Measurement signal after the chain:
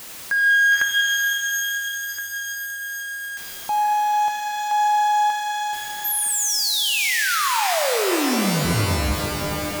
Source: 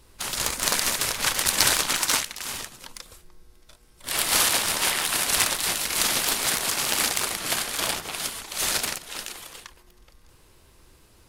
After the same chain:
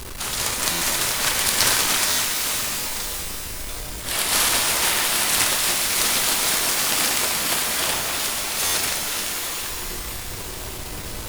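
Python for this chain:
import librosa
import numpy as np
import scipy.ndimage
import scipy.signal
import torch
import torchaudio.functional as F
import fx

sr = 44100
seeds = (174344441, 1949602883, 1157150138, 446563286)

y = x + 0.5 * 10.0 ** (-28.0 / 20.0) * np.sign(x)
y = fx.buffer_glitch(y, sr, at_s=(0.71, 2.08, 8.64), block=512, repeats=8)
y = fx.rev_shimmer(y, sr, seeds[0], rt60_s=3.6, semitones=12, shimmer_db=-2, drr_db=3.0)
y = y * librosa.db_to_amplitude(-1.0)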